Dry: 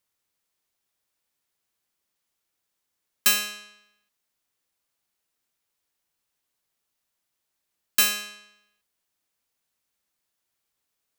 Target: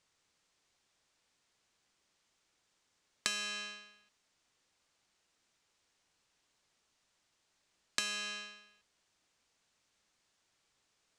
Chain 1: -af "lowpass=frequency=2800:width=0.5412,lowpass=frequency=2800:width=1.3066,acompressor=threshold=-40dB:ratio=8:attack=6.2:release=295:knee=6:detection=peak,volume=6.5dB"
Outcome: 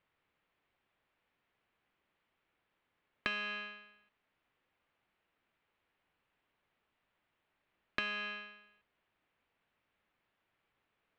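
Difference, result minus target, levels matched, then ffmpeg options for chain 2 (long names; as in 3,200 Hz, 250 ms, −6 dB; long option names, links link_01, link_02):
2,000 Hz band +4.0 dB
-af "lowpass=frequency=7700:width=0.5412,lowpass=frequency=7700:width=1.3066,acompressor=threshold=-40dB:ratio=8:attack=6.2:release=295:knee=6:detection=peak,volume=6.5dB"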